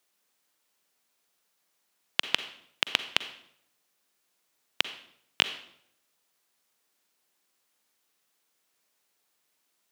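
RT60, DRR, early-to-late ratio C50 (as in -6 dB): 0.70 s, 11.0 dB, 12.0 dB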